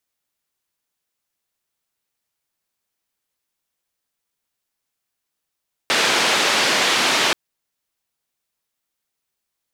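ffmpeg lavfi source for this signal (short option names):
-f lavfi -i "anoisesrc=c=white:d=1.43:r=44100:seed=1,highpass=f=250,lowpass=f=4000,volume=-5.8dB"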